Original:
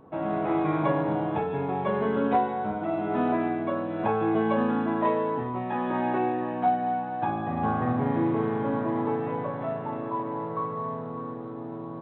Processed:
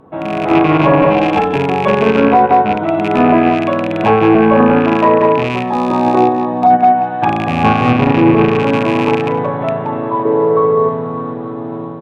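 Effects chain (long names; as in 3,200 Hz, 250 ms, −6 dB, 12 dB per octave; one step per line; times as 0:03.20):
loose part that buzzes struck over −32 dBFS, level −24 dBFS
noise gate −22 dBFS, range −22 dB
automatic gain control gain up to 5.5 dB
treble cut that deepens with the level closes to 1,900 Hz, closed at −25 dBFS
0:10.25–0:10.89: parametric band 420 Hz +13 dB 0.49 octaves
in parallel at −10 dB: soft clipping −21.5 dBFS, distortion −8 dB
0:01.00–0:01.56: on the sum: comb filter 3.8 ms, depth 72%
on a send: repeating echo 175 ms, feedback 15%, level −14.5 dB
0:05.69–0:06.70: on the sum: gain on a spectral selection 1,300–3,400 Hz −10 dB
boost into a limiter +28.5 dB
level −1 dB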